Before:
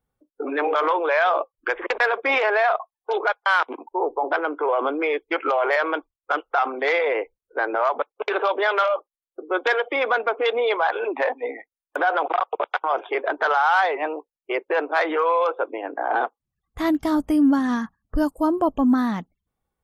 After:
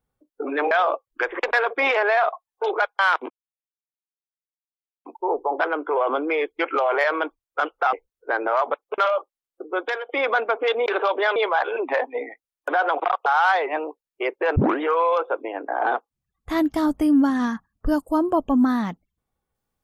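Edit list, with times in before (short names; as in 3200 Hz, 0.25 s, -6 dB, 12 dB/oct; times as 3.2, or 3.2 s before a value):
0.71–1.18 cut
3.77 insert silence 1.75 s
6.65–7.21 cut
8.26–8.76 move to 10.64
9.43–9.87 fade out, to -14 dB
12.54–13.55 cut
14.85 tape start 0.25 s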